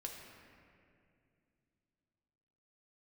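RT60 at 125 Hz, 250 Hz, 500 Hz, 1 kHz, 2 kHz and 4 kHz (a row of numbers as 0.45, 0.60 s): 3.5, 3.5, 2.7, 2.1, 2.2, 1.5 s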